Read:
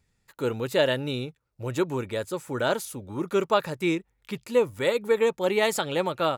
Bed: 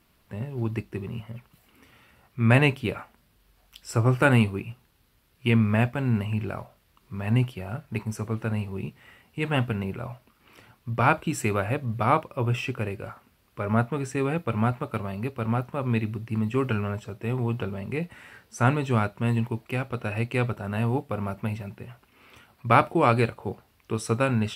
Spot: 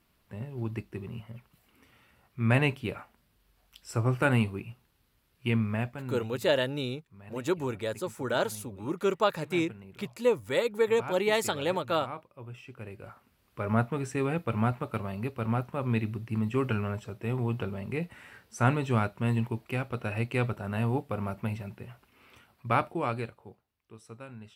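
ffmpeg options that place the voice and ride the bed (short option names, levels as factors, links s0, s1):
-filter_complex "[0:a]adelay=5700,volume=0.708[s0];[1:a]volume=3.16,afade=t=out:st=5.46:d=0.85:silence=0.223872,afade=t=in:st=12.66:d=0.94:silence=0.16788,afade=t=out:st=22.02:d=1.6:silence=0.11885[s1];[s0][s1]amix=inputs=2:normalize=0"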